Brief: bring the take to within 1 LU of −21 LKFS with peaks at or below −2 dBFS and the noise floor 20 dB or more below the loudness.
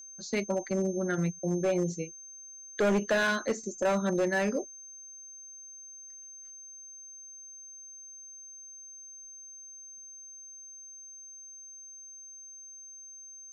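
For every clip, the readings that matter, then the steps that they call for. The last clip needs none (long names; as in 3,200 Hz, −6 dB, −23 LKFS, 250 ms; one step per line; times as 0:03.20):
share of clipped samples 1.2%; peaks flattened at −22.0 dBFS; interfering tone 6,300 Hz; level of the tone −45 dBFS; integrated loudness −30.0 LKFS; sample peak −22.0 dBFS; target loudness −21.0 LKFS
→ clipped peaks rebuilt −22 dBFS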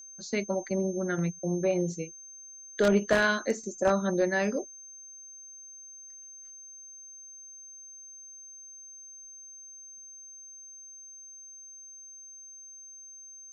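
share of clipped samples 0.0%; interfering tone 6,300 Hz; level of the tone −45 dBFS
→ notch filter 6,300 Hz, Q 30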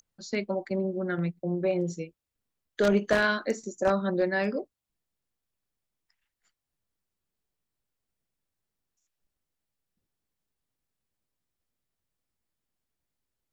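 interfering tone none found; integrated loudness −28.5 LKFS; sample peak −13.0 dBFS; target loudness −21.0 LKFS
→ level +7.5 dB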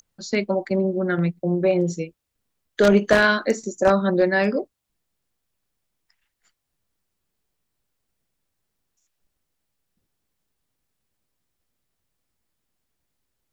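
integrated loudness −21.0 LKFS; sample peak −5.5 dBFS; background noise floor −79 dBFS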